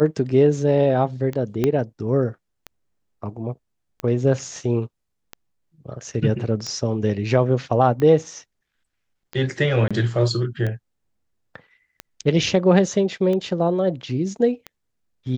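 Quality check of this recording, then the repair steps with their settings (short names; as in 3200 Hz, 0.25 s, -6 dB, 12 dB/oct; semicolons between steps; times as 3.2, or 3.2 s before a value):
tick 45 rpm -16 dBFS
1.64 pop -8 dBFS
9.88–9.91 gap 26 ms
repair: de-click; interpolate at 9.88, 26 ms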